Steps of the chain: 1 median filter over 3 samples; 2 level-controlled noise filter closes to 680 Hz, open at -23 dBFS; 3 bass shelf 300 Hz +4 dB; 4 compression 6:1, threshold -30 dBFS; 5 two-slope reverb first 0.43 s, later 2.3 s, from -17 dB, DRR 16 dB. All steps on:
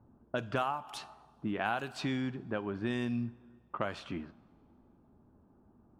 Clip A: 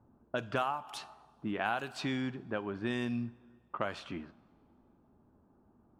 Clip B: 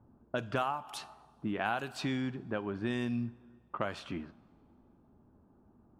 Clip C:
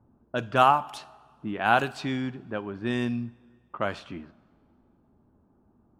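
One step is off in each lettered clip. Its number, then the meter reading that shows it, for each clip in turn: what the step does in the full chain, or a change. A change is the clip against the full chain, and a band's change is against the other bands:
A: 3, 125 Hz band -2.5 dB; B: 1, 8 kHz band +2.0 dB; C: 4, mean gain reduction 4.5 dB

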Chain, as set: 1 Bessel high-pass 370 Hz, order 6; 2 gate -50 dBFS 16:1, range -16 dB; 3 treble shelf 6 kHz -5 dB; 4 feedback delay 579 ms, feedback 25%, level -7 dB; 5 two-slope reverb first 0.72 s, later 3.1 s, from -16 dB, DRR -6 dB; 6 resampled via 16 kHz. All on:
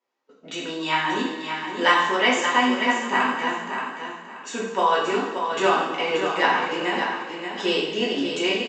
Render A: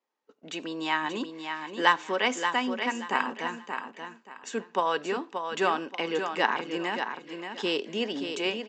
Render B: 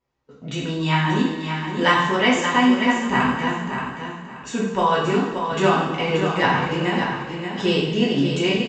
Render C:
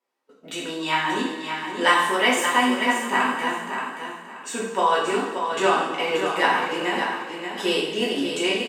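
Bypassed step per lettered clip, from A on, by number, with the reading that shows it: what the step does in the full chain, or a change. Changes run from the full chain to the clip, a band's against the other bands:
5, crest factor change +4.0 dB; 1, 125 Hz band +17.5 dB; 6, 8 kHz band +4.0 dB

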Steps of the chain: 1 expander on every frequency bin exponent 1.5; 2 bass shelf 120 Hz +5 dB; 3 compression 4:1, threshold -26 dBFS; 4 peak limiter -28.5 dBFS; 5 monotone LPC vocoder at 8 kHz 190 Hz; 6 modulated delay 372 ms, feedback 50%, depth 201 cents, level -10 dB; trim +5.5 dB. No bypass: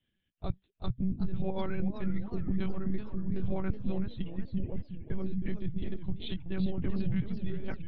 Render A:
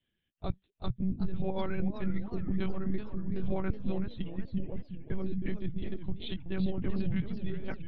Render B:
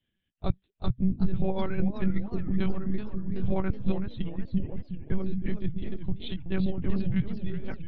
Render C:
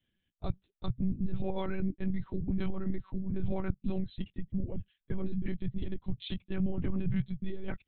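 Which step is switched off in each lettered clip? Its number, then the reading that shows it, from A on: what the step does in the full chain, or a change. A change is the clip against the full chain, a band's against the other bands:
2, 125 Hz band -2.0 dB; 4, mean gain reduction 2.5 dB; 6, crest factor change +2.0 dB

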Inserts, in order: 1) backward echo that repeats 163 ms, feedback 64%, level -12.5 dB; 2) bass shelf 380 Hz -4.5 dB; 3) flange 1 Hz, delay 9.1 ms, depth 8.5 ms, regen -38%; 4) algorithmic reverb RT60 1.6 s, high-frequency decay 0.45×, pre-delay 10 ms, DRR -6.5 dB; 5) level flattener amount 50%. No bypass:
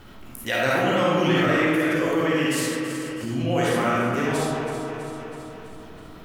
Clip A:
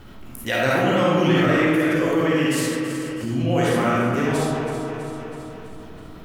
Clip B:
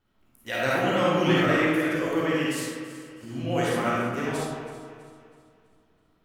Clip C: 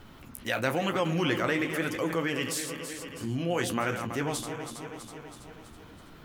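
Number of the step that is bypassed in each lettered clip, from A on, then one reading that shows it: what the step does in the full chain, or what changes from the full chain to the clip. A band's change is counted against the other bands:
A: 2, 125 Hz band +3.5 dB; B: 5, crest factor change +2.0 dB; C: 4, crest factor change +3.5 dB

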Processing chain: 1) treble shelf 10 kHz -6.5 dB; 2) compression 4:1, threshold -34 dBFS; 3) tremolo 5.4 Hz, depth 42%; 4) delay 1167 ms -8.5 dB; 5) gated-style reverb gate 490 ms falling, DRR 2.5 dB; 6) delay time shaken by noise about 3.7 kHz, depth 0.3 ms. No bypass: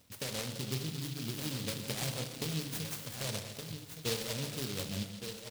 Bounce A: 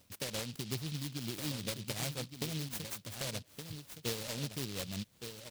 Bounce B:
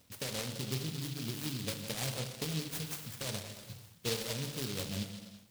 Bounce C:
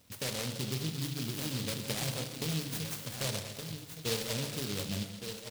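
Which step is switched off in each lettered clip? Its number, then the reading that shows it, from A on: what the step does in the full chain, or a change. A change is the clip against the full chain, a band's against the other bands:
5, momentary loudness spread change +2 LU; 4, momentary loudness spread change +1 LU; 3, loudness change +2.0 LU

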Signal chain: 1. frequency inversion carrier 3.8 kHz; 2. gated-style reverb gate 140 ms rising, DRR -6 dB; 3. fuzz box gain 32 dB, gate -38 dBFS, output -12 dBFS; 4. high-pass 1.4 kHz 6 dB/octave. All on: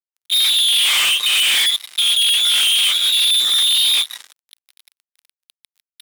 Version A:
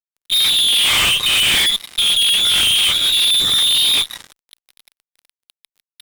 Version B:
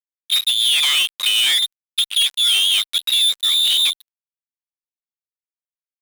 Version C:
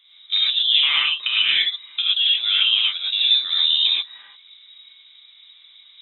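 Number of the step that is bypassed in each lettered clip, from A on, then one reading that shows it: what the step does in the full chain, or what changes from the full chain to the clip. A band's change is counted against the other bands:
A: 4, 1 kHz band +3.5 dB; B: 2, momentary loudness spread change +1 LU; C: 3, distortion -4 dB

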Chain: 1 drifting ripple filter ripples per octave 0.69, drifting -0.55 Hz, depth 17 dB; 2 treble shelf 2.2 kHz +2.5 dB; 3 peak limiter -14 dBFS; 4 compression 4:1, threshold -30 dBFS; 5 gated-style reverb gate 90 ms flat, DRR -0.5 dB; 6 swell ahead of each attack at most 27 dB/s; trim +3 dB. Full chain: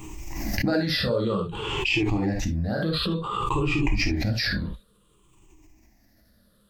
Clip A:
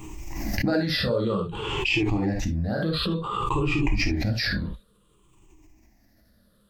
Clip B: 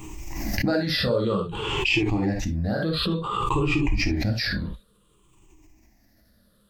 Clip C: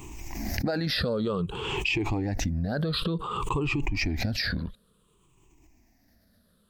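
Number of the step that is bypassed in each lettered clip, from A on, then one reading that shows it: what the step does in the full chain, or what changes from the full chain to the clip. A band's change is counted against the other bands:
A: 2, 8 kHz band -1.5 dB; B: 3, mean gain reduction 2.0 dB; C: 5, momentary loudness spread change -2 LU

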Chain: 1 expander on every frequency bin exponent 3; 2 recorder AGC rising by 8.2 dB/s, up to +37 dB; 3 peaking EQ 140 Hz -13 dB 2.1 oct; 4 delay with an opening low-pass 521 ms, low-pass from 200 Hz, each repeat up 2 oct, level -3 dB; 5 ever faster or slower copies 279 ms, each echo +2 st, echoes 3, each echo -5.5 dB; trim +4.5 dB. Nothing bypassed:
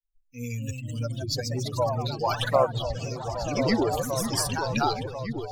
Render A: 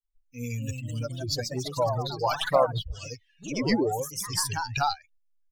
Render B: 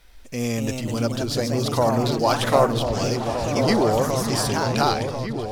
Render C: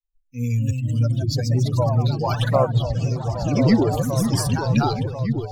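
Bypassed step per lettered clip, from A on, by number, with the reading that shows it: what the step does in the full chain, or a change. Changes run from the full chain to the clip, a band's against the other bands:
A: 4, momentary loudness spread change +5 LU; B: 1, momentary loudness spread change -2 LU; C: 3, 125 Hz band +11.0 dB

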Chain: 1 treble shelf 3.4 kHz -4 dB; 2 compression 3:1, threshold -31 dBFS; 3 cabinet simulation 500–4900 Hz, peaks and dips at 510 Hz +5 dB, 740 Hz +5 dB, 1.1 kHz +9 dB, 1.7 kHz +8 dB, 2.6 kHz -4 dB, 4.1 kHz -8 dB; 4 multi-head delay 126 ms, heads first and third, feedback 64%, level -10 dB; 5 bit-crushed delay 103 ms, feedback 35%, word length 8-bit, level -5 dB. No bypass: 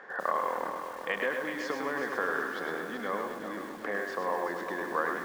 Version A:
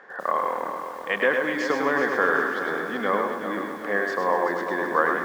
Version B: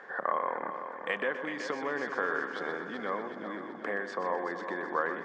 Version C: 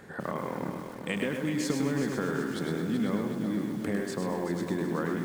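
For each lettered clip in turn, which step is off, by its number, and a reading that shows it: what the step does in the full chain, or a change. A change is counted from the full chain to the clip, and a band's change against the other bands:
2, mean gain reduction 6.5 dB; 5, loudness change -1.0 LU; 3, 125 Hz band +17.0 dB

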